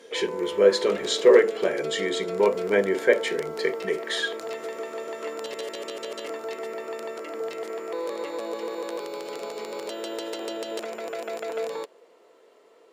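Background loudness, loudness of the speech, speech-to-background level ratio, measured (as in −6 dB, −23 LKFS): −33.5 LKFS, −23.5 LKFS, 10.0 dB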